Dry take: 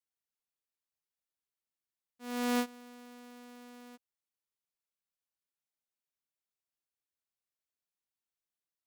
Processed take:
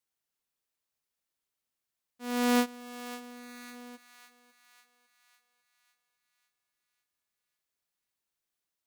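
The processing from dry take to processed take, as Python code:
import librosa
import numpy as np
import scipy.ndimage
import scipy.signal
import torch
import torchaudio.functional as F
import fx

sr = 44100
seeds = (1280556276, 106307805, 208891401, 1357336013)

y = fx.echo_thinned(x, sr, ms=551, feedback_pct=55, hz=640.0, wet_db=-13.0)
y = y * 10.0 ** (5.5 / 20.0)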